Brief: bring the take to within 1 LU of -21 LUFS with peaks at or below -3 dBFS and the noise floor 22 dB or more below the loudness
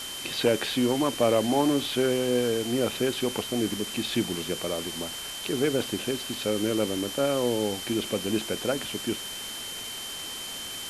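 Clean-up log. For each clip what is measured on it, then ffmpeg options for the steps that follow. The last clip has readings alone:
steady tone 3100 Hz; tone level -37 dBFS; noise floor -37 dBFS; noise floor target -50 dBFS; loudness -27.5 LUFS; peak -10.0 dBFS; loudness target -21.0 LUFS
-> -af "bandreject=f=3.1k:w=30"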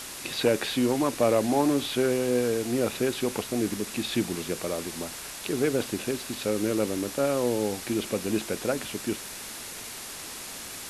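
steady tone none; noise floor -40 dBFS; noise floor target -50 dBFS
-> -af "afftdn=nr=10:nf=-40"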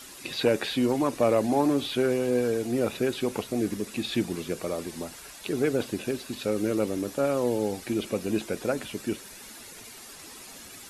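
noise floor -46 dBFS; noise floor target -50 dBFS
-> -af "afftdn=nr=6:nf=-46"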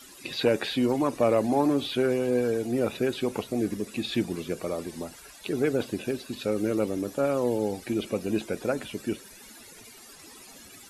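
noise floor -49 dBFS; noise floor target -50 dBFS
-> -af "afftdn=nr=6:nf=-49"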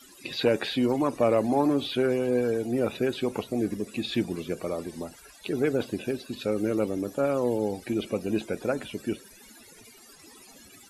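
noise floor -52 dBFS; loudness -28.0 LUFS; peak -11.0 dBFS; loudness target -21.0 LUFS
-> -af "volume=7dB"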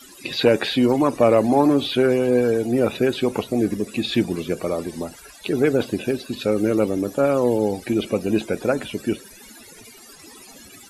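loudness -21.0 LUFS; peak -4.0 dBFS; noise floor -45 dBFS

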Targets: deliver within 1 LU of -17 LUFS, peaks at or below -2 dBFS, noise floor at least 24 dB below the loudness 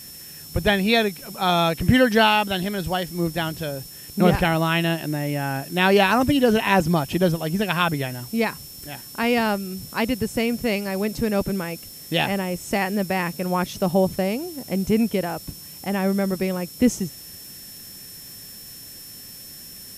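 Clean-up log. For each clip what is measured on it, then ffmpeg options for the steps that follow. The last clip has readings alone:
steady tone 5400 Hz; tone level -43 dBFS; noise floor -41 dBFS; noise floor target -46 dBFS; loudness -22.0 LUFS; peak -3.0 dBFS; loudness target -17.0 LUFS
-> -af "bandreject=f=5.4k:w=30"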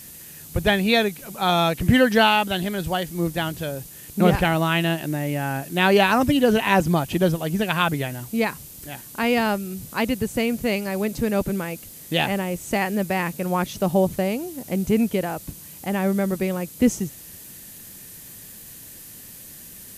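steady tone none; noise floor -42 dBFS; noise floor target -46 dBFS
-> -af "afftdn=nr=6:nf=-42"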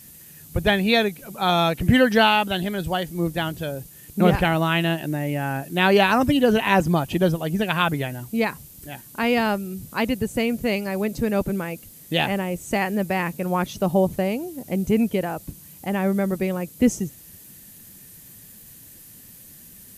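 noise floor -46 dBFS; noise floor target -47 dBFS
-> -af "afftdn=nr=6:nf=-46"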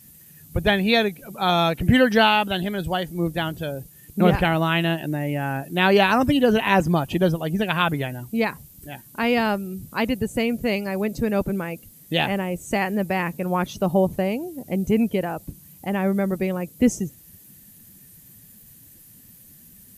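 noise floor -49 dBFS; loudness -22.5 LUFS; peak -3.0 dBFS; loudness target -17.0 LUFS
-> -af "volume=5.5dB,alimiter=limit=-2dB:level=0:latency=1"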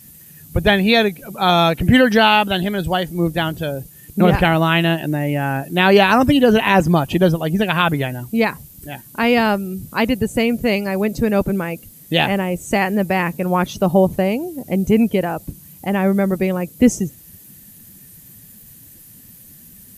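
loudness -17.0 LUFS; peak -2.0 dBFS; noise floor -44 dBFS

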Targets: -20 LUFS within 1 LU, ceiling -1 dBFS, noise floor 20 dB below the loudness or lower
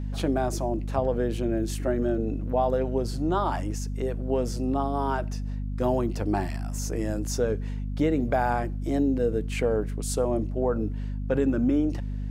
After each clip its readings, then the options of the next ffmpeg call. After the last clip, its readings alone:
hum 50 Hz; harmonics up to 250 Hz; hum level -28 dBFS; loudness -27.5 LUFS; peak -11.5 dBFS; loudness target -20.0 LUFS
-> -af "bandreject=f=50:t=h:w=4,bandreject=f=100:t=h:w=4,bandreject=f=150:t=h:w=4,bandreject=f=200:t=h:w=4,bandreject=f=250:t=h:w=4"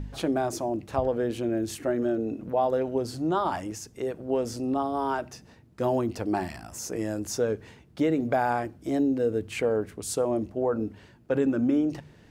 hum none; loudness -28.5 LUFS; peak -13.0 dBFS; loudness target -20.0 LUFS
-> -af "volume=8.5dB"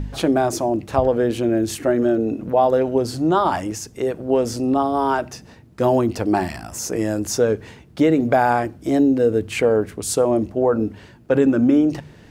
loudness -20.0 LUFS; peak -4.5 dBFS; noise floor -46 dBFS

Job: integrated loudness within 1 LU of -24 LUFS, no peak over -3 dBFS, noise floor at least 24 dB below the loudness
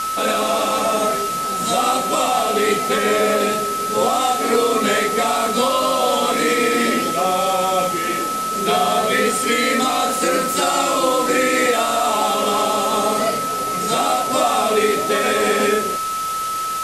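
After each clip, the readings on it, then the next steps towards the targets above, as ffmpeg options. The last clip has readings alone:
steady tone 1300 Hz; tone level -21 dBFS; noise floor -23 dBFS; noise floor target -42 dBFS; loudness -18.0 LUFS; peak -5.0 dBFS; loudness target -24.0 LUFS
-> -af "bandreject=f=1.3k:w=30"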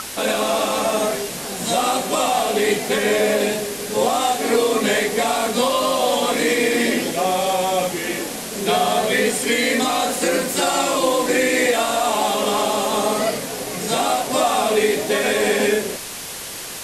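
steady tone none; noise floor -32 dBFS; noise floor target -44 dBFS
-> -af "afftdn=nr=12:nf=-32"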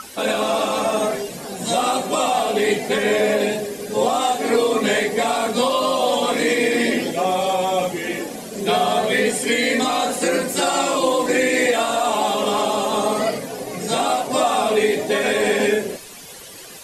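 noise floor -38 dBFS; noise floor target -44 dBFS
-> -af "afftdn=nr=6:nf=-38"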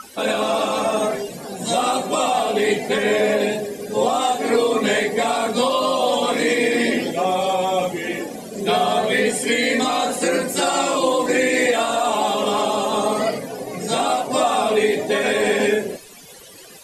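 noise floor -42 dBFS; noise floor target -44 dBFS
-> -af "afftdn=nr=6:nf=-42"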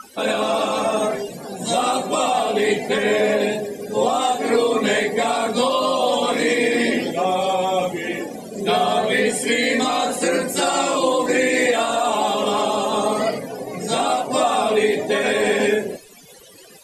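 noise floor -45 dBFS; loudness -20.0 LUFS; peak -6.5 dBFS; loudness target -24.0 LUFS
-> -af "volume=-4dB"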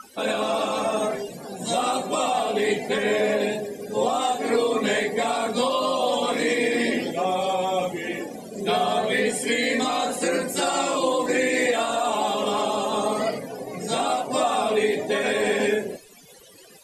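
loudness -24.0 LUFS; peak -10.5 dBFS; noise floor -49 dBFS

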